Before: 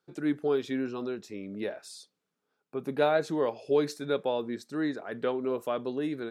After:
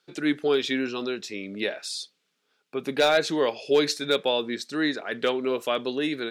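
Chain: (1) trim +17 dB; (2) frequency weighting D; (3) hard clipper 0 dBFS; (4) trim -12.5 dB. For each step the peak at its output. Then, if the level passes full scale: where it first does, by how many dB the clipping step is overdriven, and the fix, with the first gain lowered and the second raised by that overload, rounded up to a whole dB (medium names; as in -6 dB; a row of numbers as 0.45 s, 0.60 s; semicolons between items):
+4.5 dBFS, +9.0 dBFS, 0.0 dBFS, -12.5 dBFS; step 1, 9.0 dB; step 1 +8 dB, step 4 -3.5 dB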